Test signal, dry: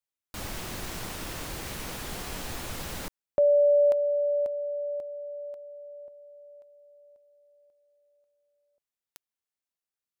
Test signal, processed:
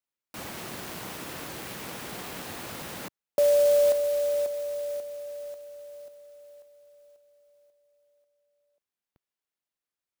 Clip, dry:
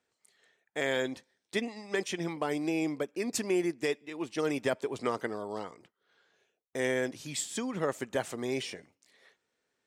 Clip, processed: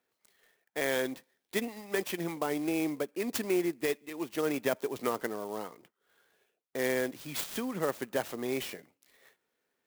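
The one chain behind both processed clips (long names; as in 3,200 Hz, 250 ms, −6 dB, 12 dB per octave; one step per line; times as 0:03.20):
high-pass filter 140 Hz 12 dB per octave
converter with an unsteady clock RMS 0.038 ms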